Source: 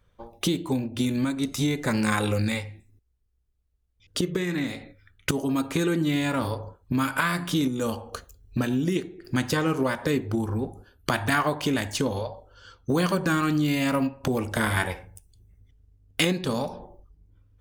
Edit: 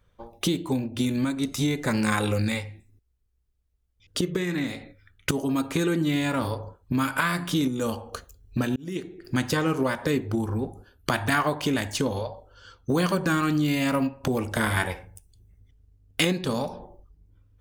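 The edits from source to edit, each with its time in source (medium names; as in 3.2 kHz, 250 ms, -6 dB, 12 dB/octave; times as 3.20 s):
8.76–9.12 s: fade in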